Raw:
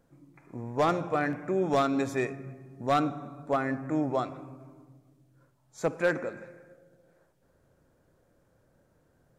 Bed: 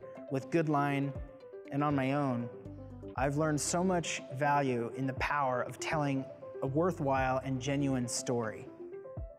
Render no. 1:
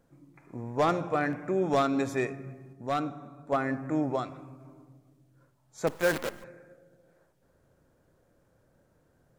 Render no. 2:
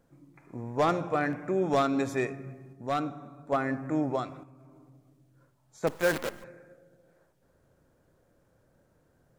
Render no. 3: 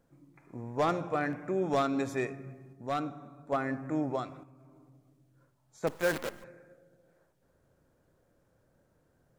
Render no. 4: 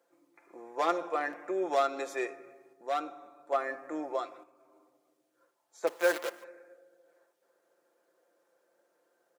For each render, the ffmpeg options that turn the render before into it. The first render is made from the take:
-filter_complex "[0:a]asettb=1/sr,asplit=3[a][b][c];[a]atrim=end=4.164[d];[b]atrim=start=4.16:end=4.65,asetpts=PTS-STARTPTS,afade=t=in:d=0.004:c=qsin,afade=t=out:st=0.486:d=0.004:c=qsin,equalizer=f=530:t=o:w=2.3:g=-4[e];[c]atrim=start=4.646[f];[d][e]acrossfade=d=0.004:c1=hsin:c2=qsin[g];[g][f]acrossfade=d=0.004:c1=qsin:c2=hsin,asettb=1/sr,asplit=3[h][i][j];[h]atrim=end=5.874[k];[i]atrim=start=5.87:end=6.44,asetpts=PTS-STARTPTS,afade=t=in:d=0.004:c=qsin,afade=t=out:st=0.566:d=0.004:c=qsin,acrusher=bits=6:dc=4:mix=0:aa=0.000001[l];[j]atrim=start=6.436[m];[k][l]acrossfade=d=0.004:c1=hsin:c2=qsin[n];[n][m]acrossfade=d=0.004:c1=qsin:c2=hsin,asplit=3[o][p][q];[o]atrim=end=2.732[r];[p]atrim=start=2.728:end=3.522,asetpts=PTS-STARTPTS,volume=-4.5dB[s];[q]atrim=start=3.518[t];[r][s]acrossfade=d=0.004:c1=hsin:c2=hsin[u];[u][t]acrossfade=d=0.004:c1=hsin:c2=hsin"
-filter_complex "[0:a]asettb=1/sr,asplit=3[a][b][c];[a]atrim=end=4.434[d];[b]atrim=start=4.43:end=5.83,asetpts=PTS-STARTPTS,afade=t=in:d=0.004:c=qsin,afade=t=out:st=1.396:d=0.004:c=qsin,acompressor=threshold=-51dB:ratio=4:attack=3.2:release=140:knee=1:detection=peak[e];[c]atrim=start=5.826[f];[d][e]acrossfade=d=0.004:c1=hsin:c2=qsin[g];[g][f]acrossfade=d=0.004:c1=qsin:c2=hsin"
-af "volume=-3dB"
-af "highpass=f=370:w=0.5412,highpass=f=370:w=1.3066,aecho=1:1:5.8:0.5"

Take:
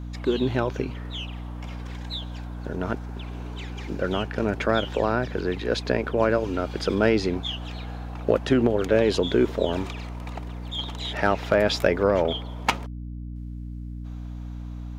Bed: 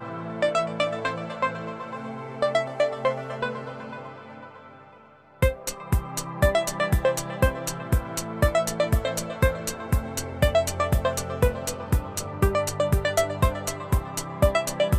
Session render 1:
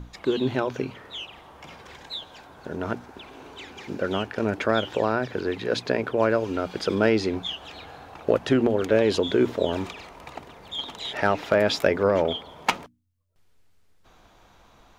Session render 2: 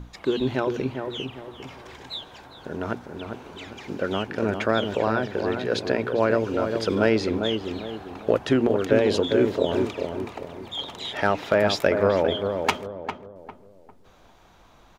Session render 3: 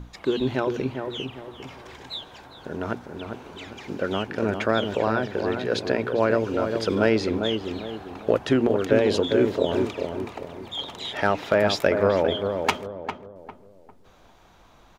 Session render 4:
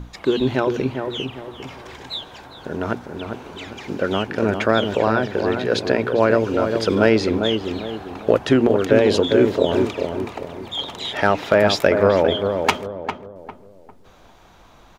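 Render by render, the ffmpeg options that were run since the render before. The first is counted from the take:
-af "bandreject=f=60:t=h:w=6,bandreject=f=120:t=h:w=6,bandreject=f=180:t=h:w=6,bandreject=f=240:t=h:w=6,bandreject=f=300:t=h:w=6"
-filter_complex "[0:a]asplit=2[a][b];[b]adelay=401,lowpass=f=1.1k:p=1,volume=-5dB,asplit=2[c][d];[d]adelay=401,lowpass=f=1.1k:p=1,volume=0.4,asplit=2[e][f];[f]adelay=401,lowpass=f=1.1k:p=1,volume=0.4,asplit=2[g][h];[h]adelay=401,lowpass=f=1.1k:p=1,volume=0.4,asplit=2[i][j];[j]adelay=401,lowpass=f=1.1k:p=1,volume=0.4[k];[a][c][e][g][i][k]amix=inputs=6:normalize=0"
-af anull
-af "volume=5dB,alimiter=limit=-2dB:level=0:latency=1"

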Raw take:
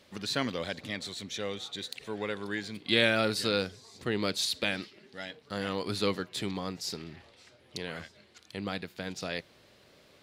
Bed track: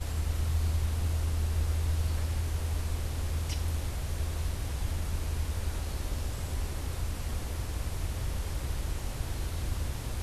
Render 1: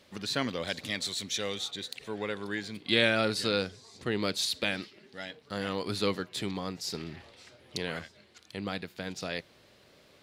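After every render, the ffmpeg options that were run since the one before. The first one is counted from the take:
-filter_complex "[0:a]asettb=1/sr,asplit=3[a][b][c];[a]atrim=end=0.674[d];[b]atrim=start=0.67:end=1.71,asetpts=PTS-STARTPTS,afade=t=in:d=0.004:c=qsin,afade=t=out:st=1.036:d=0.004:c=qsin,highshelf=f=2.9k:g=9[e];[c]atrim=start=1.706[f];[d][e]acrossfade=d=0.004:c1=hsin:c2=qsin[g];[g][f]acrossfade=d=0.004:c1=qsin:c2=hsin,asettb=1/sr,asplit=3[h][i][j];[h]atrim=end=2.964[k];[i]atrim=start=2.96:end=4.06,asetpts=PTS-STARTPTS,afade=t=in:d=0.004:c=qsin,afade=t=out:st=1.096:d=0.004:c=qsin,lowpass=11k[l];[j]atrim=start=4.056[m];[k][l]acrossfade=d=0.004:c1=hsin:c2=qsin[n];[n][m]acrossfade=d=0.004:c1=qsin:c2=hsin,asplit=3[o][p][q];[o]atrim=end=6.942[r];[p]atrim=start=6.938:end=7.992,asetpts=PTS-STARTPTS,volume=3.5dB[s];[q]atrim=start=7.988[t];[r][s]acrossfade=d=0.004:c1=hsin:c2=hsin[u];[u][t]acrossfade=d=0.004:c1=hsin:c2=hsin"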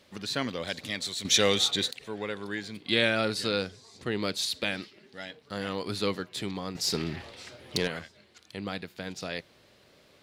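-filter_complex "[0:a]asettb=1/sr,asplit=3[a][b][c];[a]atrim=end=6.754[d];[b]atrim=start=6.75:end=7.88,asetpts=PTS-STARTPTS,afade=t=in:d=0.004:c=qsin,afade=t=out:st=1.126:d=0.004:c=qsin,aeval=exprs='0.133*sin(PI/2*1.58*val(0)/0.133)':c=same[e];[c]atrim=start=7.876[f];[d][e]acrossfade=d=0.004:c1=hsin:c2=qsin[g];[g][f]acrossfade=d=0.004:c1=qsin:c2=hsin,asplit=3[h][i][j];[h]atrim=end=1.252[k];[i]atrim=start=1.248:end=1.912,asetpts=PTS-STARTPTS,volume=10.5dB[l];[j]atrim=start=1.908[m];[k][l]acrossfade=d=0.004:c1=hsin:c2=hsin[n];[n][m]acrossfade=d=0.004:c1=hsin:c2=hsin"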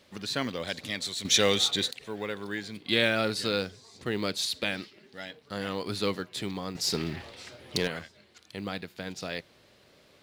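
-af "acrusher=bits=8:mode=log:mix=0:aa=0.000001"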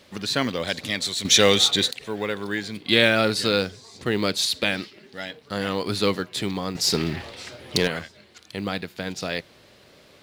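-af "volume=7dB,alimiter=limit=-1dB:level=0:latency=1"

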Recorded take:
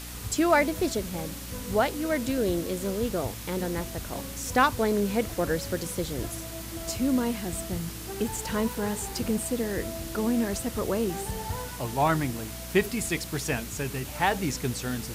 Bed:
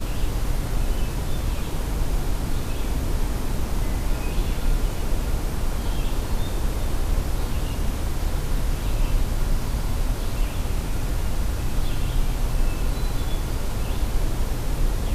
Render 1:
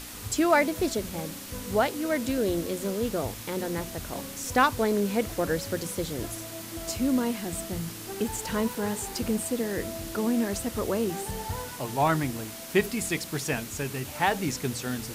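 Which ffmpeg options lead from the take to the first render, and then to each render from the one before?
-af "bandreject=f=60:t=h:w=6,bandreject=f=120:t=h:w=6,bandreject=f=180:t=h:w=6"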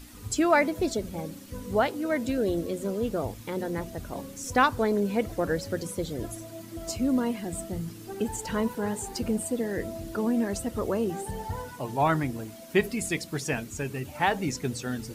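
-af "afftdn=nr=11:nf=-40"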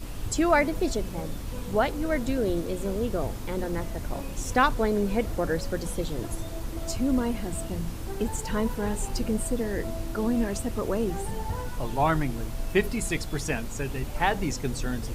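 -filter_complex "[1:a]volume=-10.5dB[a];[0:a][a]amix=inputs=2:normalize=0"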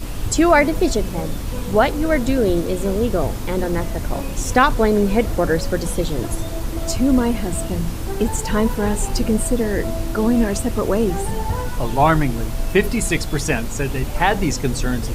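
-af "volume=9dB,alimiter=limit=-3dB:level=0:latency=1"

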